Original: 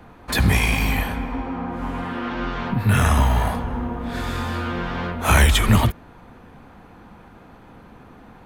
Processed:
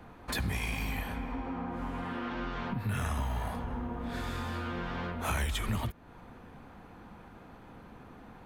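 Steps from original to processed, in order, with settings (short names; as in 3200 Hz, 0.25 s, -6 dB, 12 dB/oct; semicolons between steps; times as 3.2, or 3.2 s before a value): compressor 2.5:1, threshold -29 dBFS, peak gain reduction 12.5 dB; gain -5.5 dB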